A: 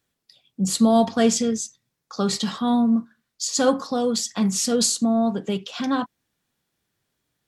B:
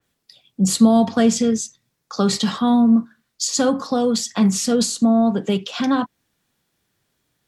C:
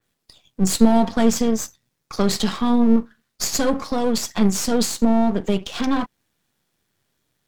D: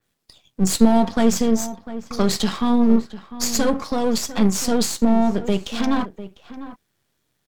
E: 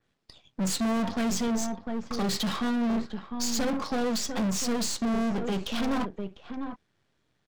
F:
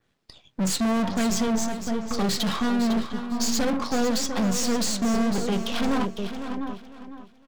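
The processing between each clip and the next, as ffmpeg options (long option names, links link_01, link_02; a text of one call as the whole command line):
ffmpeg -i in.wav -filter_complex "[0:a]acrossover=split=270[link_01][link_02];[link_02]acompressor=threshold=-23dB:ratio=4[link_03];[link_01][link_03]amix=inputs=2:normalize=0,adynamicequalizer=threshold=0.00891:dfrequency=3400:dqfactor=0.7:tfrequency=3400:tqfactor=0.7:attack=5:release=100:ratio=0.375:range=2:mode=cutabove:tftype=highshelf,volume=5.5dB" out.wav
ffmpeg -i in.wav -af "aeval=exprs='if(lt(val(0),0),0.251*val(0),val(0))':channel_layout=same,volume=2dB" out.wav
ffmpeg -i in.wav -filter_complex "[0:a]asplit=2[link_01][link_02];[link_02]adelay=699.7,volume=-14dB,highshelf=frequency=4000:gain=-15.7[link_03];[link_01][link_03]amix=inputs=2:normalize=0" out.wav
ffmpeg -i in.wav -af "asoftclip=type=tanh:threshold=-14.5dB,adynamicsmooth=sensitivity=4.5:basefreq=5200,asoftclip=type=hard:threshold=-24.5dB" out.wav
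ffmpeg -i in.wav -af "aecho=1:1:504|1008|1512:0.316|0.0822|0.0214,volume=3.5dB" out.wav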